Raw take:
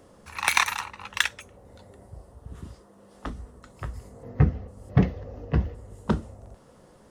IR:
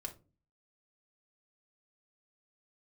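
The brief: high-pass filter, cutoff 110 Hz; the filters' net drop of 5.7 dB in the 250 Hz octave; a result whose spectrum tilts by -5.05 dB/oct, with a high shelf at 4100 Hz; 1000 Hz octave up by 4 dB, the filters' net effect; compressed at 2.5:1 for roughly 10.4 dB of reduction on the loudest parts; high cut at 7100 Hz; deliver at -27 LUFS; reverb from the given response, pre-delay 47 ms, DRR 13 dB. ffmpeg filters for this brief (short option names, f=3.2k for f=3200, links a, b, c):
-filter_complex "[0:a]highpass=110,lowpass=7.1k,equalizer=f=250:t=o:g=-9,equalizer=f=1k:t=o:g=5.5,highshelf=f=4.1k:g=-6,acompressor=threshold=-32dB:ratio=2.5,asplit=2[a][b];[1:a]atrim=start_sample=2205,adelay=47[c];[b][c]afir=irnorm=-1:irlink=0,volume=-10.5dB[d];[a][d]amix=inputs=2:normalize=0,volume=11dB"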